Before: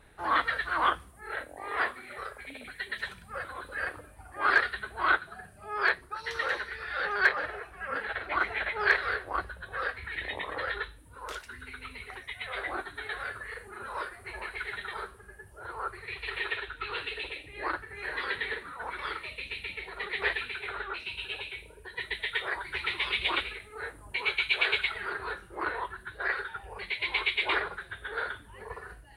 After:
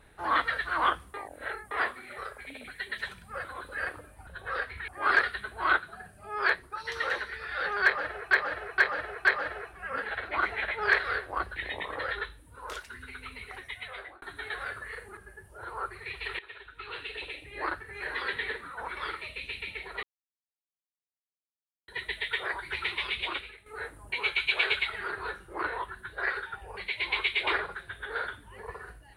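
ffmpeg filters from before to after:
ffmpeg -i in.wav -filter_complex "[0:a]asplit=15[link_01][link_02][link_03][link_04][link_05][link_06][link_07][link_08][link_09][link_10][link_11][link_12][link_13][link_14][link_15];[link_01]atrim=end=1.142[link_16];[link_02]atrim=start=1.138:end=1.712,asetpts=PTS-STARTPTS,areverse[link_17];[link_03]atrim=start=1.708:end=4.272[link_18];[link_04]atrim=start=9.538:end=10.152[link_19];[link_05]atrim=start=4.268:end=7.702[link_20];[link_06]atrim=start=7.228:end=7.702[link_21];[link_07]atrim=start=7.228:end=7.702[link_22];[link_08]atrim=start=7.228:end=9.542[link_23];[link_09]atrim=start=10.148:end=12.81,asetpts=PTS-STARTPTS,afade=type=out:start_time=2.162:duration=0.5[link_24];[link_10]atrim=start=12.81:end=13.762,asetpts=PTS-STARTPTS,afade=type=in:duration=0.004:curve=hsin[link_25];[link_11]atrim=start=15.188:end=16.41,asetpts=PTS-STARTPTS,afade=type=out:start_time=1.218:duration=0.004:curve=hsin:silence=0.112202[link_26];[link_12]atrim=start=16.41:end=20.05,asetpts=PTS-STARTPTS,afade=type=in:duration=1.02:silence=0.112202,afade=type=out:start_time=3.636:duration=0.004:curve=hsin[link_27];[link_13]atrim=start=20.05:end=21.9,asetpts=PTS-STARTPTS,volume=0[link_28];[link_14]atrim=start=21.9:end=23.68,asetpts=PTS-STARTPTS,afade=type=in:duration=0.004:curve=hsin,afade=type=out:start_time=0.94:duration=0.84:silence=0.281838[link_29];[link_15]atrim=start=23.68,asetpts=PTS-STARTPTS,afade=type=in:duration=0.004:curve=hsin:silence=0.281838[link_30];[link_16][link_17]acrossfade=duration=0.004:curve1=hsin:curve2=hsin[link_31];[link_31][link_18]acrossfade=duration=0.004:curve1=hsin:curve2=hsin[link_32];[link_32][link_19]acrossfade=duration=0.004:curve1=hsin:curve2=hsin[link_33];[link_33][link_20]acrossfade=duration=0.004:curve1=hsin:curve2=hsin[link_34];[link_34][link_21]acrossfade=duration=0.004:curve1=hsin:curve2=hsin[link_35];[link_35][link_22]acrossfade=duration=0.004:curve1=hsin:curve2=hsin[link_36];[link_36][link_23]acrossfade=duration=0.004:curve1=hsin:curve2=hsin[link_37];[link_24][link_25]concat=n=2:v=0:a=1[link_38];[link_37][link_38]acrossfade=duration=0.004:curve1=hsin:curve2=hsin[link_39];[link_26][link_27][link_28][link_29][link_30]concat=n=5:v=0:a=1[link_40];[link_39][link_40]acrossfade=duration=0.004:curve1=hsin:curve2=hsin" out.wav

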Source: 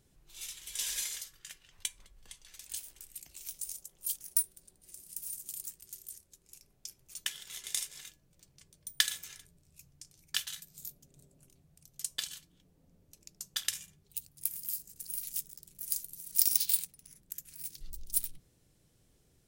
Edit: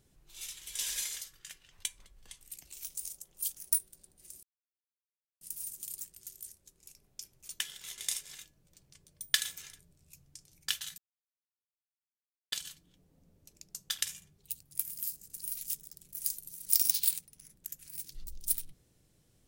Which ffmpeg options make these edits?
ffmpeg -i in.wav -filter_complex "[0:a]asplit=5[link_01][link_02][link_03][link_04][link_05];[link_01]atrim=end=2.412[link_06];[link_02]atrim=start=3.048:end=5.07,asetpts=PTS-STARTPTS,afade=type=out:start_time=2.018:duration=0.004:curve=hsin,apad=pad_dur=0.98[link_07];[link_03]atrim=start=5.07:end=10.64,asetpts=PTS-STARTPTS,afade=type=in:duration=0.004:curve=hsin,afade=type=out:start_time=5.566:duration=0.004:curve=hsin[link_08];[link_04]atrim=start=10.64:end=12.18,asetpts=PTS-STARTPTS,volume=0[link_09];[link_05]atrim=start=12.18,asetpts=PTS-STARTPTS,afade=type=in:duration=0.004:curve=hsin[link_10];[link_07][link_08][link_09][link_10]concat=n=4:v=0:a=1[link_11];[link_06][link_11]acrossfade=duration=0.004:curve1=hsin:curve2=hsin" out.wav

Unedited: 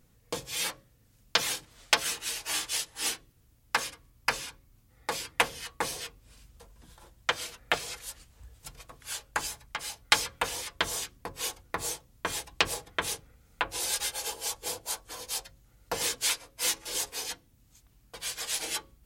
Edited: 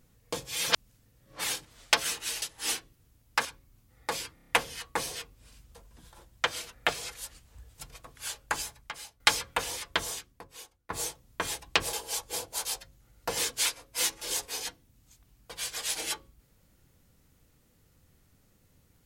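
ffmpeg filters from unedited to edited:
ffmpeg -i in.wav -filter_complex "[0:a]asplit=14[link_01][link_02][link_03][link_04][link_05][link_06][link_07][link_08][link_09][link_10][link_11][link_12][link_13][link_14];[link_01]atrim=end=0.662[link_15];[link_02]atrim=start=0.658:end=1.442,asetpts=PTS-STARTPTS,areverse[link_16];[link_03]atrim=start=1.438:end=2.422[link_17];[link_04]atrim=start=2.788:end=3.822[link_18];[link_05]atrim=start=4.448:end=5.372[link_19];[link_06]atrim=start=5.338:end=5.372[link_20];[link_07]atrim=start=5.338:end=5.372[link_21];[link_08]atrim=start=5.338:end=5.372[link_22];[link_09]atrim=start=5.338:end=5.372[link_23];[link_10]atrim=start=5.338:end=10.05,asetpts=PTS-STARTPTS,afade=type=out:start_time=4.122:duration=0.59:silence=0.237137[link_24];[link_11]atrim=start=10.05:end=11.75,asetpts=PTS-STARTPTS,afade=type=in:duration=0.004:curve=hsin:silence=0.237137,afade=type=out:start_time=0.76:duration=0.94:curve=qua:silence=0.11885[link_25];[link_12]atrim=start=11.75:end=12.782,asetpts=PTS-STARTPTS,afade=type=in:duration=0.004:curve=hsin:silence=0.11885[link_26];[link_13]atrim=start=14.258:end=14.982[link_27];[link_14]atrim=start=15.288[link_28];[link_15][link_16]acrossfade=duration=0.004:curve1=hsin:curve2=hsin[link_29];[link_29][link_17]acrossfade=duration=0.004:curve1=hsin:curve2=hsin[link_30];[link_30][link_18]acrossfade=duration=0.004:curve1=hsin:curve2=hsin[link_31];[link_31][link_19]acrossfade=duration=0.004:curve1=hsin:curve2=hsin[link_32];[link_32][link_20]acrossfade=duration=0.004:curve1=hsin:curve2=hsin[link_33];[link_33][link_21]acrossfade=duration=0.004:curve1=hsin:curve2=hsin[link_34];[link_34][link_22]acrossfade=duration=0.004:curve1=hsin:curve2=hsin[link_35];[link_35][link_23]acrossfade=duration=0.004:curve1=hsin:curve2=hsin[link_36];[link_24][link_25][link_26]concat=n=3:v=0:a=1[link_37];[link_36][link_37]acrossfade=duration=0.004:curve1=hsin:curve2=hsin[link_38];[link_38][link_27]acrossfade=duration=0.004:curve1=hsin:curve2=hsin[link_39];[link_39][link_28]acrossfade=duration=0.004:curve1=hsin:curve2=hsin" out.wav

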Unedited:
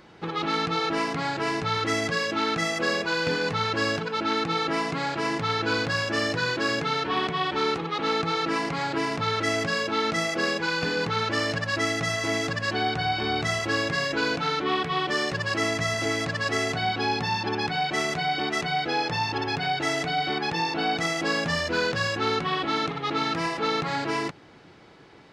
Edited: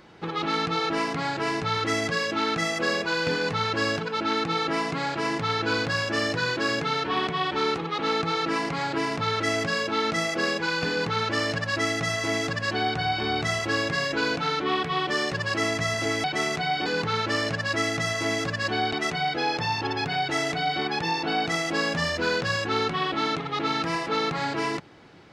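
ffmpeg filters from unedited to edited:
ffmpeg -i in.wav -filter_complex "[0:a]asplit=4[link_01][link_02][link_03][link_04];[link_01]atrim=end=16.242[link_05];[link_02]atrim=start=17.818:end=18.442[link_06];[link_03]atrim=start=10.888:end=12.962[link_07];[link_04]atrim=start=18.438[link_08];[link_05][link_06]acrossfade=duration=0.004:curve1=hsin:curve2=hsin[link_09];[link_09][link_07]acrossfade=duration=0.004:curve1=hsin:curve2=hsin[link_10];[link_10][link_08]acrossfade=duration=0.004:curve1=hsin:curve2=hsin" out.wav

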